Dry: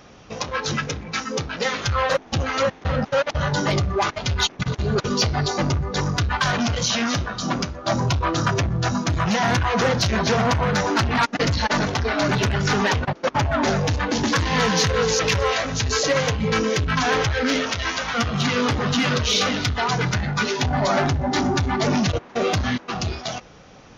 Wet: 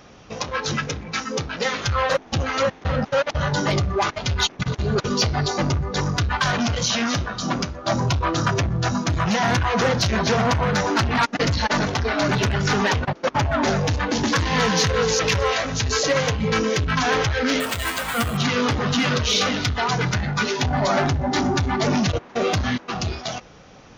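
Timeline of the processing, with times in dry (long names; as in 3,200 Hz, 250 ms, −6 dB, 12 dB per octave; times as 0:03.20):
0:17.60–0:18.37: bad sample-rate conversion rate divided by 4×, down filtered, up hold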